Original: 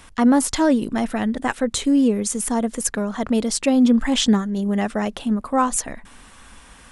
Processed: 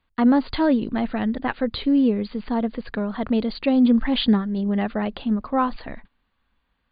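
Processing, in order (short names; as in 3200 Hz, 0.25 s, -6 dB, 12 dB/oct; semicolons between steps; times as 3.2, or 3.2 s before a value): low shelf 230 Hz +3.5 dB; gate -35 dBFS, range -24 dB; brick-wall FIR low-pass 4800 Hz; gain -3 dB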